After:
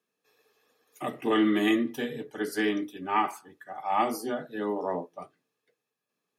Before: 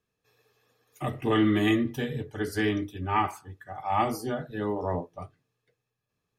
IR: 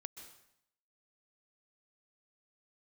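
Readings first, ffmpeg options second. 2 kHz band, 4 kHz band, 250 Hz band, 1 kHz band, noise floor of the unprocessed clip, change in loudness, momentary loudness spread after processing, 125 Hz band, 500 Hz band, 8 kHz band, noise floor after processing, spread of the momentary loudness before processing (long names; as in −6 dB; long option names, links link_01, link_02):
0.0 dB, 0.0 dB, −0.5 dB, 0.0 dB, −83 dBFS, −0.5 dB, 14 LU, −13.0 dB, 0.0 dB, +1.0 dB, −85 dBFS, 16 LU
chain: -af "highpass=frequency=200:width=0.5412,highpass=frequency=200:width=1.3066,equalizer=frequency=11000:width_type=o:width=0.43:gain=3"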